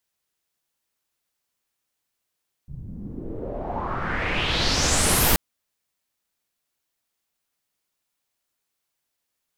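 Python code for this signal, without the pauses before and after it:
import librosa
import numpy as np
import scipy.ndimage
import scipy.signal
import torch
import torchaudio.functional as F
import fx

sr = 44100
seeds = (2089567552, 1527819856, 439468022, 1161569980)

y = fx.riser_noise(sr, seeds[0], length_s=2.68, colour='pink', kind='lowpass', start_hz=120.0, end_hz=16000.0, q=3.3, swell_db=18, law='exponential')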